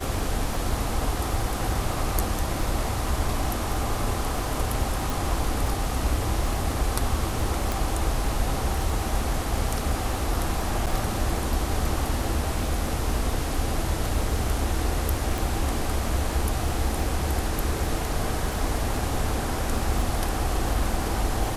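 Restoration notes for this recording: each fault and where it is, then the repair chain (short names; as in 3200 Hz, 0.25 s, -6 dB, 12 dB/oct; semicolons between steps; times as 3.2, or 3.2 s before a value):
crackle 20/s -29 dBFS
5.1 pop
7.72 pop
10.86–10.87 gap 7 ms
15.38 pop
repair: de-click; interpolate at 10.86, 7 ms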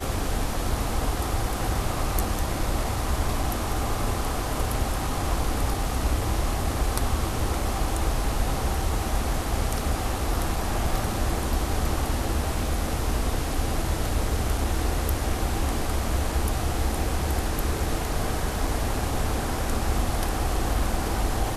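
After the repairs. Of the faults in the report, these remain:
7.72 pop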